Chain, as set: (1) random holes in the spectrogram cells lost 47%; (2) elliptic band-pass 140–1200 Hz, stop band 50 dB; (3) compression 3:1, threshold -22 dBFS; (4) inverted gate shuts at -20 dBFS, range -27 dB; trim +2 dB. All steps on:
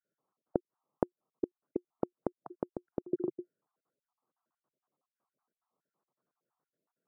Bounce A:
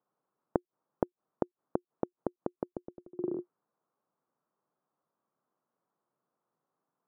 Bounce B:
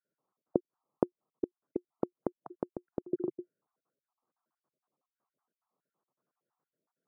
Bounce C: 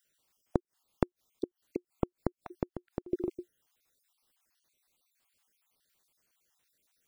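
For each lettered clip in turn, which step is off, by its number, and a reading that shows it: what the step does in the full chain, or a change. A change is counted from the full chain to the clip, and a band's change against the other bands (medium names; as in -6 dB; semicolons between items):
1, 1 kHz band +2.5 dB; 3, momentary loudness spread change +1 LU; 2, 125 Hz band +7.0 dB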